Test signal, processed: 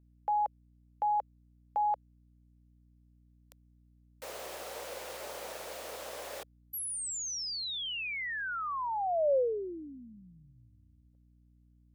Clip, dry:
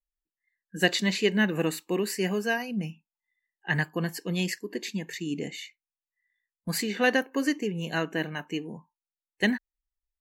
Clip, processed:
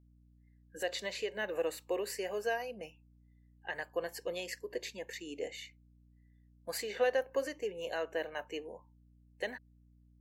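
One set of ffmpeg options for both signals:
-af "alimiter=limit=-20dB:level=0:latency=1:release=243,highpass=f=540:t=q:w=3.8,aeval=exprs='val(0)+0.00178*(sin(2*PI*60*n/s)+sin(2*PI*2*60*n/s)/2+sin(2*PI*3*60*n/s)/3+sin(2*PI*4*60*n/s)/4+sin(2*PI*5*60*n/s)/5)':c=same,volume=-7dB"

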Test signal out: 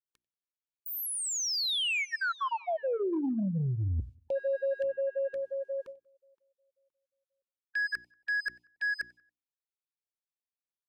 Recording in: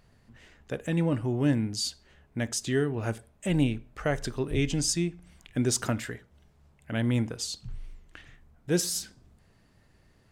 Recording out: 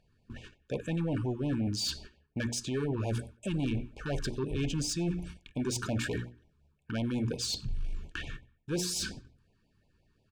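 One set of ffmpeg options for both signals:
-filter_complex "[0:a]lowpass=11k,agate=range=-21dB:threshold=-52dB:ratio=16:detection=peak,bandreject=f=60:t=h:w=6,bandreject=f=120:t=h:w=6,bandreject=f=180:t=h:w=6,bandreject=f=240:t=h:w=6,bandreject=f=300:t=h:w=6,bandreject=f=360:t=h:w=6,areverse,acompressor=threshold=-41dB:ratio=5,areverse,asoftclip=type=hard:threshold=-37.5dB,asplit=2[a][b];[b]adynamicsmooth=sensitivity=0.5:basefreq=6.8k,volume=-0.5dB[c];[a][c]amix=inputs=2:normalize=0,asoftclip=type=tanh:threshold=-33dB,asuperstop=centerf=2000:order=12:qfactor=6.2,asplit=2[d][e];[e]adelay=93,lowpass=f=3.9k:p=1,volume=-23dB,asplit=2[f][g];[g]adelay=93,lowpass=f=3.9k:p=1,volume=0.41,asplit=2[h][i];[i]adelay=93,lowpass=f=3.9k:p=1,volume=0.41[j];[d][f][h][j]amix=inputs=4:normalize=0,afftfilt=real='re*(1-between(b*sr/1024,580*pow(1500/580,0.5+0.5*sin(2*PI*5.6*pts/sr))/1.41,580*pow(1500/580,0.5+0.5*sin(2*PI*5.6*pts/sr))*1.41))':imag='im*(1-between(b*sr/1024,580*pow(1500/580,0.5+0.5*sin(2*PI*5.6*pts/sr))/1.41,580*pow(1500/580,0.5+0.5*sin(2*PI*5.6*pts/sr))*1.41))':win_size=1024:overlap=0.75,volume=8dB"

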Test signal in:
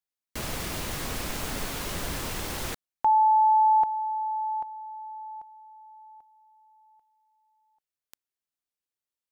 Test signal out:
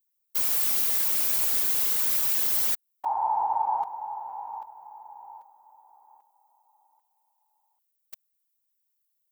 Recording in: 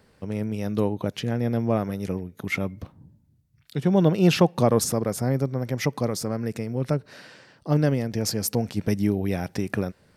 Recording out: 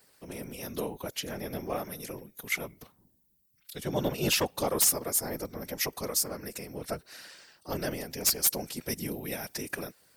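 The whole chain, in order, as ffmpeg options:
-af "aemphasis=mode=production:type=riaa,aeval=exprs='0.299*(abs(mod(val(0)/0.299+3,4)-2)-1)':c=same,afftfilt=real='hypot(re,im)*cos(2*PI*random(0))':imag='hypot(re,im)*sin(2*PI*random(1))':win_size=512:overlap=0.75"

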